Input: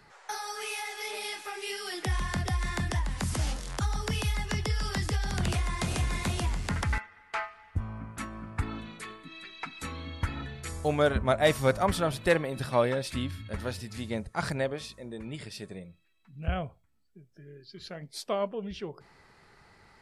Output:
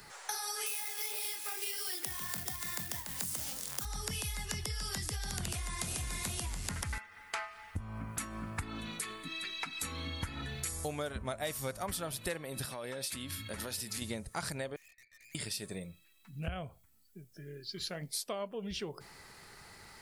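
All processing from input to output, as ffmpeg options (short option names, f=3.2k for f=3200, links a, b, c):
-filter_complex "[0:a]asettb=1/sr,asplit=3[a][b][c];[a]atrim=end=0.664[d];[b]atrim=start=0.66:end=3.85,asetpts=PTS-STARTPTS,afade=t=in:d=0.004:c=qsin,afade=t=out:st=3.186:d=0.004:c=qsin,highpass=130,bandreject=f=50:t=h:w=6,bandreject=f=100:t=h:w=6,bandreject=f=150:t=h:w=6,bandreject=f=200:t=h:w=6,bandreject=f=250:t=h:w=6,bandreject=f=300:t=h:w=6,bandreject=f=350:t=h:w=6,bandreject=f=400:t=h:w=6,acrusher=bits=2:mode=log:mix=0:aa=0.000001[e];[c]atrim=start=3.846[f];[d][e]acrossfade=d=0.004:c1=hsin:c2=qsin[g];[g][f]acrossfade=d=0.004:c1=qsin:c2=hsin,asettb=1/sr,asplit=3[h][i][j];[h]atrim=end=12.654[k];[i]atrim=start=12.65:end=14.02,asetpts=PTS-STARTPTS,afade=t=in:d=0.004:c=qsin,afade=t=out:st=1.366:d=0.004:c=qsin,highpass=f=180:p=1,acompressor=threshold=-38dB:ratio=8:attack=3.2:release=140:knee=1:detection=peak[l];[j]atrim=start=14.016[m];[k][l]acrossfade=d=0.004:c1=hsin:c2=qsin[n];[n][m]acrossfade=d=0.004:c1=qsin:c2=hsin,asettb=1/sr,asplit=3[o][p][q];[o]atrim=end=14.764[r];[p]atrim=start=14.76:end=15.35,asetpts=PTS-STARTPTS,afade=t=in:d=0.004:c=qsin,afade=t=out:st=0.586:d=0.004:c=qsin,asuperpass=centerf=2100:order=8:qfactor=2.8,aeval=exprs='(tanh(1260*val(0)+0.5)-tanh(0.5))/1260':c=same[s];[q]atrim=start=15.346[t];[r][s]acrossfade=d=0.004:c1=hsin:c2=qsin[u];[u][t]acrossfade=d=0.004:c1=qsin:c2=hsin,aemphasis=mode=production:type=75fm,acompressor=threshold=-38dB:ratio=6,volume=2.5dB"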